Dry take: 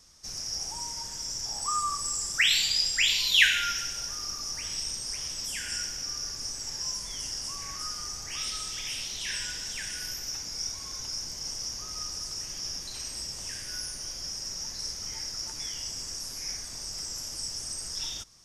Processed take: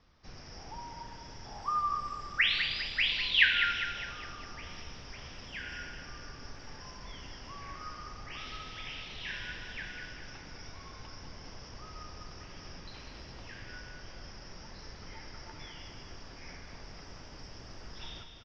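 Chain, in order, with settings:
Bessel low-pass filter 2,400 Hz, order 8
repeating echo 203 ms, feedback 49%, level −7.5 dB

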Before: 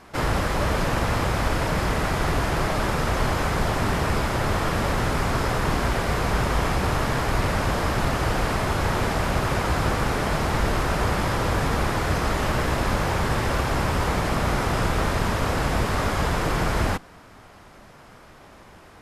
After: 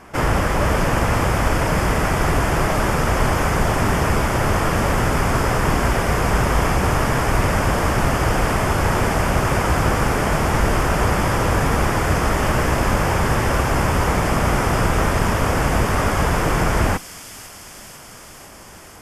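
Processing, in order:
parametric band 4,000 Hz −13 dB 0.3 octaves
delay with a high-pass on its return 499 ms, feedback 74%, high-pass 4,600 Hz, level −5 dB
level +5 dB

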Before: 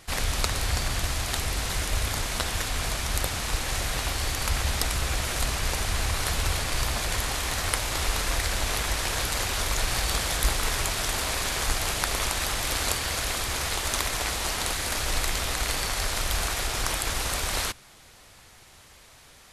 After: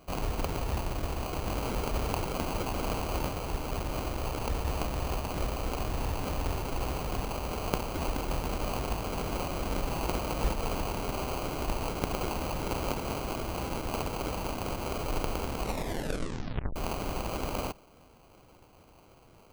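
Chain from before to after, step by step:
0:01.46–0:03.31: high-shelf EQ 5,000 Hz +7.5 dB
sample-rate reduction 1,800 Hz, jitter 0%
0:15.62: tape stop 1.14 s
level −5 dB

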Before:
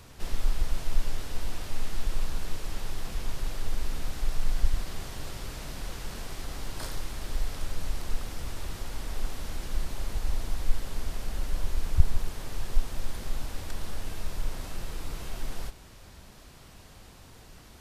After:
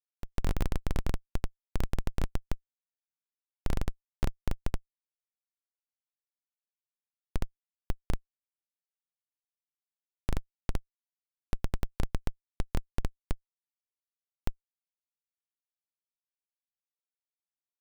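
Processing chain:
comparator with hysteresis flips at −18.5 dBFS
expander for the loud parts 1.5 to 1, over −40 dBFS
level +2.5 dB

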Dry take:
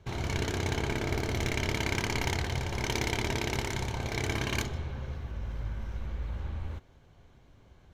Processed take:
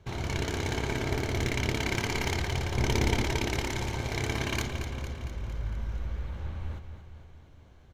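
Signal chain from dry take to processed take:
0:02.77–0:03.24: low-shelf EQ 420 Hz +7.5 dB
on a send: repeating echo 228 ms, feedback 59%, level −9.5 dB

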